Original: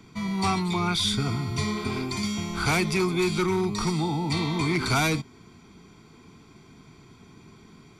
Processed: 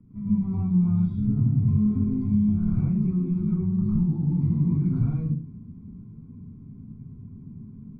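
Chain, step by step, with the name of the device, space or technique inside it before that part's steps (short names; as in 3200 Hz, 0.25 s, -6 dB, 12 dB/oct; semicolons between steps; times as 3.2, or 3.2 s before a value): television next door (compressor, threshold -28 dBFS, peak gain reduction 8 dB; LPF 270 Hz 12 dB/oct; reverb RT60 0.40 s, pre-delay 99 ms, DRR -7 dB); band shelf 530 Hz -8.5 dB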